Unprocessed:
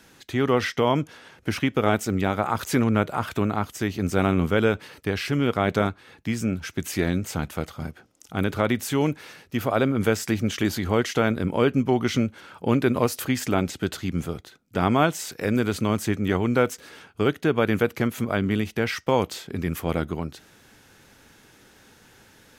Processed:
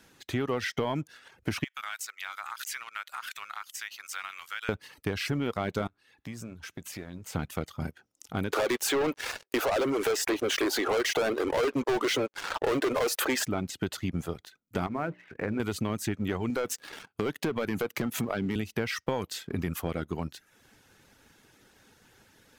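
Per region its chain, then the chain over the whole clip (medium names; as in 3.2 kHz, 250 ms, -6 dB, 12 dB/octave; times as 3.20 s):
1.64–4.69 s: high-pass 1.3 kHz 24 dB/octave + compression 3:1, threshold -33 dBFS
5.87–7.35 s: compression 4:1, threshold -33 dBFS + feedback comb 58 Hz, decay 1.1 s, mix 40%
8.53–13.46 s: inverse Chebyshev high-pass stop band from 190 Hz + tilt EQ -2.5 dB/octave + waveshaping leveller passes 5
14.86–15.60 s: steep low-pass 2.4 kHz + hum notches 60/120/180/240/300/360/420/480/540/600 Hz + compression 4:1, threshold -23 dBFS
16.50–18.56 s: high-pass 110 Hz + waveshaping leveller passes 2 + compression 2:1, threshold -28 dBFS
whole clip: reverb removal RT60 0.55 s; waveshaping leveller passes 1; compression, threshold -23 dBFS; trim -3.5 dB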